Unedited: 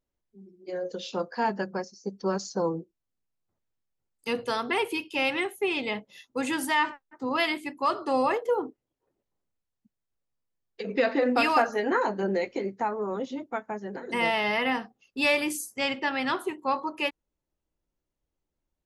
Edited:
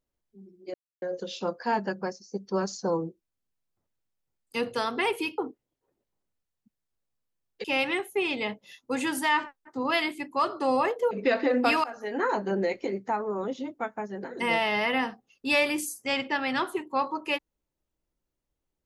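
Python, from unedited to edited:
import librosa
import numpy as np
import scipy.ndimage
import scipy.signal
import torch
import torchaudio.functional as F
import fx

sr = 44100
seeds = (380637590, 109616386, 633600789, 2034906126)

y = fx.edit(x, sr, fx.insert_silence(at_s=0.74, length_s=0.28),
    fx.move(start_s=8.57, length_s=2.26, to_s=5.1),
    fx.fade_in_from(start_s=11.56, length_s=0.51, floor_db=-23.5), tone=tone)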